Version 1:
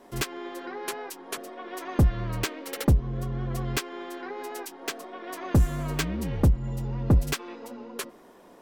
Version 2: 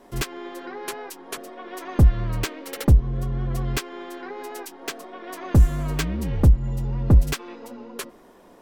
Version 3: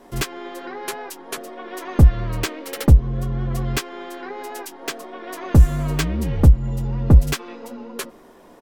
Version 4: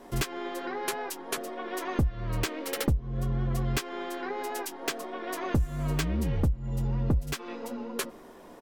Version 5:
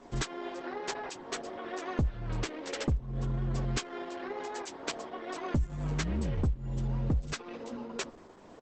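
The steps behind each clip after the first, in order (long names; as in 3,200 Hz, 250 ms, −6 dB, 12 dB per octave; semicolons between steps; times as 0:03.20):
low-shelf EQ 83 Hz +9 dB; level +1 dB
double-tracking delay 13 ms −12 dB; level +3 dB
downward compressor 4 to 1, threshold −24 dBFS, peak gain reduction 15.5 dB; level −1.5 dB
level −3 dB; Opus 10 kbit/s 48,000 Hz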